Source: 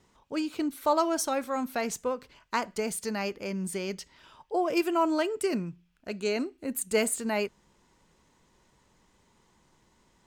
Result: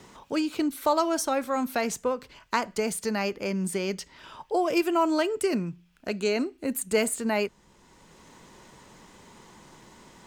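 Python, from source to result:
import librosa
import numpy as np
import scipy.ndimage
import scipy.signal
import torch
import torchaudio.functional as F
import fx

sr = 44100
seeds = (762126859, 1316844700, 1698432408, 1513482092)

y = fx.band_squash(x, sr, depth_pct=40)
y = F.gain(torch.from_numpy(y), 3.0).numpy()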